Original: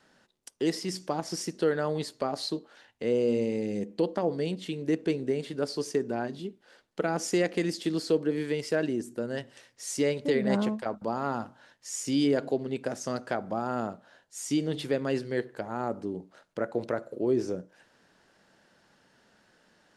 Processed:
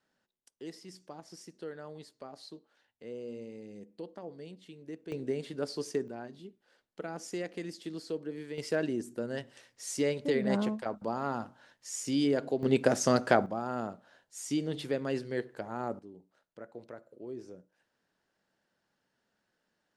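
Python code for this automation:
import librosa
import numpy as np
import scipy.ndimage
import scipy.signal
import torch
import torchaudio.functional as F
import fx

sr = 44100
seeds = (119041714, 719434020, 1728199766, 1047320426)

y = fx.gain(x, sr, db=fx.steps((0.0, -16.0), (5.12, -4.5), (6.08, -11.0), (8.58, -3.0), (12.63, 7.0), (13.46, -4.0), (15.99, -16.0)))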